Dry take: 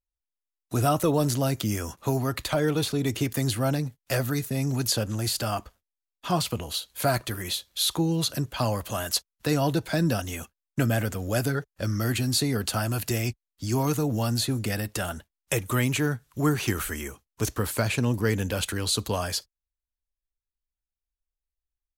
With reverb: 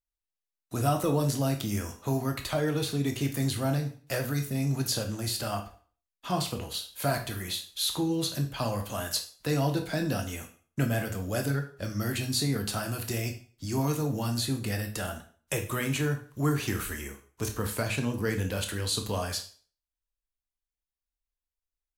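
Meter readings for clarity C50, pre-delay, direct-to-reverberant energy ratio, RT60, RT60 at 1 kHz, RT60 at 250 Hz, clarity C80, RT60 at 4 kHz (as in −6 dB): 10.5 dB, 6 ms, 4.5 dB, 0.45 s, 0.45 s, 0.40 s, 15.0 dB, 0.40 s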